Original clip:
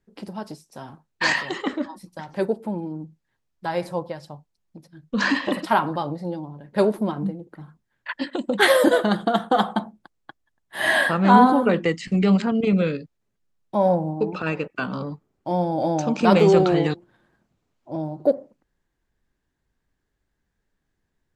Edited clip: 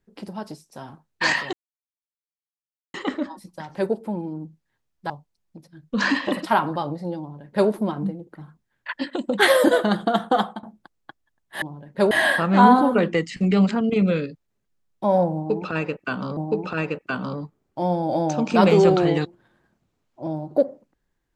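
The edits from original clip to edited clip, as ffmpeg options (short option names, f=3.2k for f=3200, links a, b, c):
-filter_complex "[0:a]asplit=7[a][b][c][d][e][f][g];[a]atrim=end=1.53,asetpts=PTS-STARTPTS,afade=t=out:st=1.526:d=0.004:c=hsin,apad=pad_dur=1.41[h];[b]atrim=start=1.53:end=3.692,asetpts=PTS-STARTPTS,afade=t=in:d=0.004:c=hsin[i];[c]atrim=start=4.298:end=9.83,asetpts=PTS-STARTPTS,afade=t=out:st=5.242:d=0.29:silence=0.1[j];[d]atrim=start=9.83:end=10.822,asetpts=PTS-STARTPTS,afade=t=in:d=0.004:c=hsin:silence=0.1[k];[e]atrim=start=6.398:end=6.892[l];[f]atrim=start=10.818:end=15.082[m];[g]atrim=start=14.058[n];[h][i]concat=n=2:v=0:a=1[o];[j][k]concat=n=2:v=0:a=1[p];[o][p]acrossfade=d=0.004:c1=hsin:c2=hsin[q];[q][l]acrossfade=d=0.004:c1=hsin:c2=hsin[r];[r][m]acrossfade=d=0.004:c1=hsin:c2=hsin[s];[s][n]acrossfade=d=0.004:c1=hsin:c2=hsin"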